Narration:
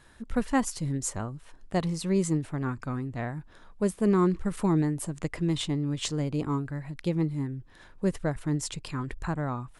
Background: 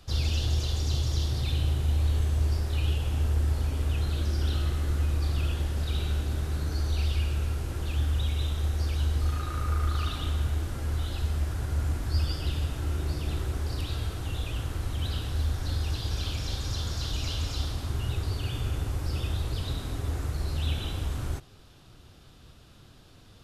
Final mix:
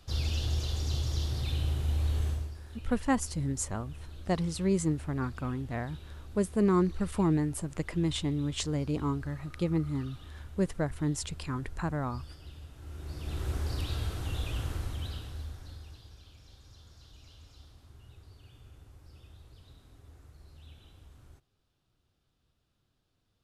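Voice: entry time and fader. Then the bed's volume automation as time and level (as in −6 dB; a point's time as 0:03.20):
2.55 s, −2.0 dB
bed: 0:02.30 −4 dB
0:02.56 −18 dB
0:12.73 −18 dB
0:13.50 −2 dB
0:14.71 −2 dB
0:16.23 −23.5 dB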